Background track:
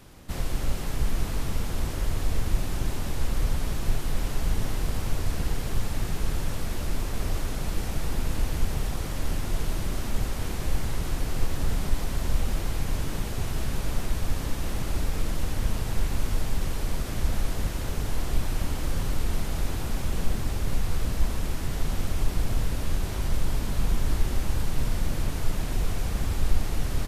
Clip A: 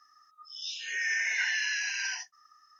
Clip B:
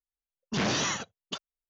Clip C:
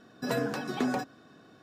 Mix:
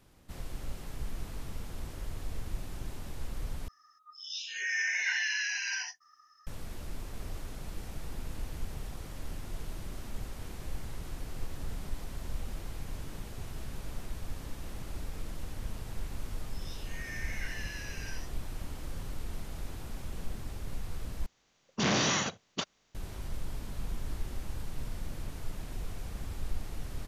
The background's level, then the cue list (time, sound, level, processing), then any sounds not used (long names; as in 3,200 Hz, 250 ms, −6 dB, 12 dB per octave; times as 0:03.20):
background track −12 dB
0:03.68: overwrite with A −1.5 dB
0:16.03: mix in A −13 dB
0:21.26: overwrite with B −2 dB + compressor on every frequency bin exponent 0.6
not used: C